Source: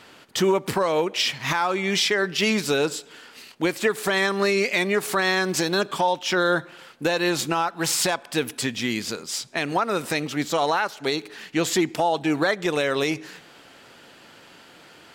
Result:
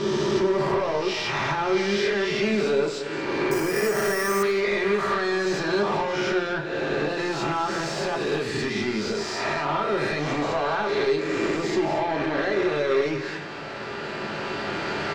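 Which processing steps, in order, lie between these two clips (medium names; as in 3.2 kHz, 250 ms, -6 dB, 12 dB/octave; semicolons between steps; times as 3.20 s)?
reverse spectral sustain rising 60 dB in 1.29 s; recorder AGC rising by 7 dB/s; peaking EQ 3.2 kHz -6.5 dB 0.35 oct; compression 4:1, threshold -26 dBFS, peak gain reduction 10.5 dB; saturation -30.5 dBFS, distortion -9 dB; distance through air 170 m; delay 229 ms -13 dB; reverberation RT60 0.30 s, pre-delay 3 ms, DRR 1.5 dB; 3.51–4.43 s: careless resampling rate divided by 6×, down filtered, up hold; modulated delay 90 ms, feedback 47%, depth 118 cents, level -16 dB; trim +7 dB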